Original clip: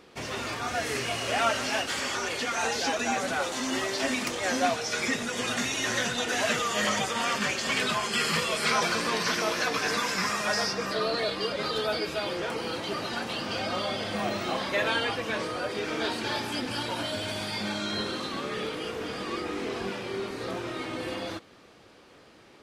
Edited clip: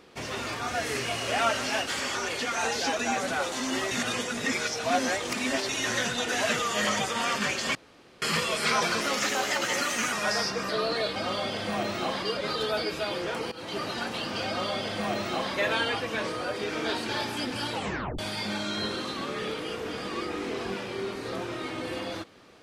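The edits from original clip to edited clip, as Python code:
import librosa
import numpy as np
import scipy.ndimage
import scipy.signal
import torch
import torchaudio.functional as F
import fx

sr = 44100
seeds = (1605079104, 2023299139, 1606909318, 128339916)

y = fx.edit(x, sr, fx.reverse_span(start_s=3.91, length_s=1.78),
    fx.room_tone_fill(start_s=7.75, length_s=0.47),
    fx.speed_span(start_s=9.01, length_s=1.34, speed=1.2),
    fx.fade_in_from(start_s=12.67, length_s=0.33, curve='qsin', floor_db=-19.0),
    fx.duplicate(start_s=13.62, length_s=1.07, to_s=11.38),
    fx.tape_stop(start_s=16.89, length_s=0.45), tone=tone)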